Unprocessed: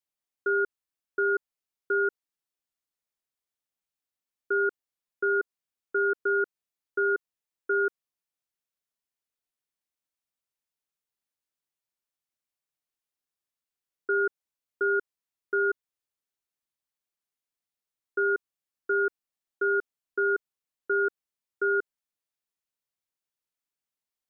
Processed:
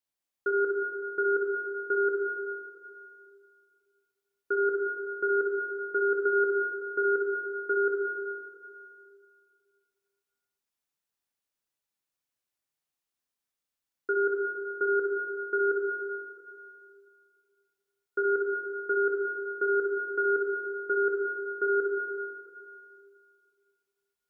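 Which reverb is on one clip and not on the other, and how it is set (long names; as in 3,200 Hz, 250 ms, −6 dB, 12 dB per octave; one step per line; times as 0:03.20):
dense smooth reverb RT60 2.3 s, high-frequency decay 0.85×, DRR −0.5 dB
level −1 dB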